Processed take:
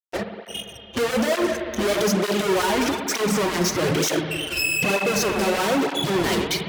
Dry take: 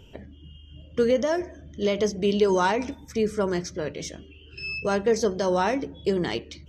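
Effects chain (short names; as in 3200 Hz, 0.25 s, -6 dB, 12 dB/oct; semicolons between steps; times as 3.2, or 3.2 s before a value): spectral noise reduction 25 dB; 1.55–3.21 low shelf 340 Hz -6 dB; in parallel at -1 dB: compressor, threshold -31 dBFS, peak gain reduction 13.5 dB; on the sum: fuzz box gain 48 dB, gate -51 dBFS; on a send at -5 dB: reverb RT60 2.8 s, pre-delay 57 ms; on the sum: tape flanging out of phase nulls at 1.1 Hz, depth 7.2 ms; gain -5.5 dB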